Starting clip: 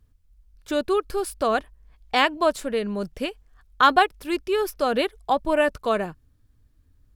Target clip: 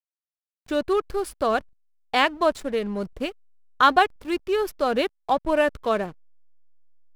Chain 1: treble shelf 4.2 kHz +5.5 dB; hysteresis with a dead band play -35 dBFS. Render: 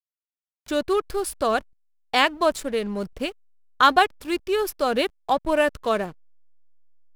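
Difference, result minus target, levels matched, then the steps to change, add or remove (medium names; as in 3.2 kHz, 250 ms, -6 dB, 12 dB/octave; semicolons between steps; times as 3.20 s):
8 kHz band +6.5 dB
change: treble shelf 4.2 kHz -2 dB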